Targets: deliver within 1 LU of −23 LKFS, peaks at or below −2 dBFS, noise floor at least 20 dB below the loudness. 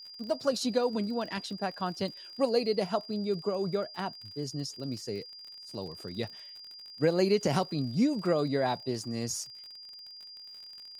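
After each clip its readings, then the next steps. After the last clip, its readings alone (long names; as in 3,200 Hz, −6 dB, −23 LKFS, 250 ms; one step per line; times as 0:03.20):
crackle rate 47 per second; interfering tone 4,800 Hz; level of the tone −45 dBFS; integrated loudness −31.5 LKFS; sample peak −14.0 dBFS; target loudness −23.0 LKFS
→ click removal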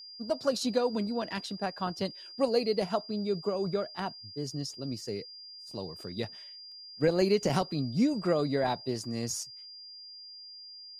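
crackle rate 0.091 per second; interfering tone 4,800 Hz; level of the tone −45 dBFS
→ notch filter 4,800 Hz, Q 30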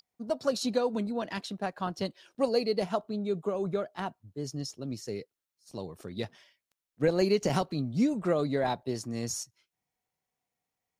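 interfering tone none found; integrated loudness −31.5 LKFS; sample peak −14.0 dBFS; target loudness −23.0 LKFS
→ level +8.5 dB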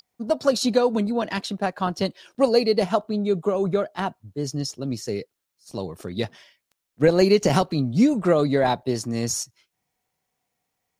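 integrated loudness −23.0 LKFS; sample peak −5.5 dBFS; background noise floor −81 dBFS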